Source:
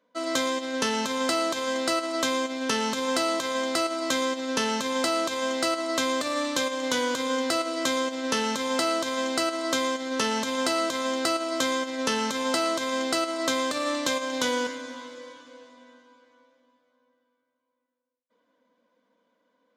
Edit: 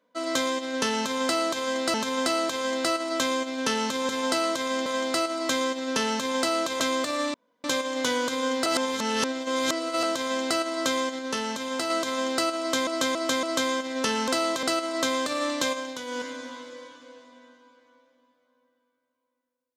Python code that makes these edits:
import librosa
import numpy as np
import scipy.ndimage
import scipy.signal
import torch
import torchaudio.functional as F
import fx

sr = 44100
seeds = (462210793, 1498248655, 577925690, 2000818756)

y = fx.edit(x, sr, fx.repeat(start_s=0.97, length_s=0.97, count=2),
    fx.swap(start_s=3.12, length_s=0.35, other_s=12.31, other_length_s=0.77),
    fx.cut(start_s=5.41, length_s=0.56),
    fx.insert_room_tone(at_s=6.51, length_s=0.3),
    fx.reverse_span(start_s=7.53, length_s=1.37),
    fx.clip_gain(start_s=10.06, length_s=0.71, db=-3.5),
    fx.repeat(start_s=11.46, length_s=0.28, count=4),
    fx.fade_down_up(start_s=14.17, length_s=0.59, db=-11.0, fade_s=0.26), tone=tone)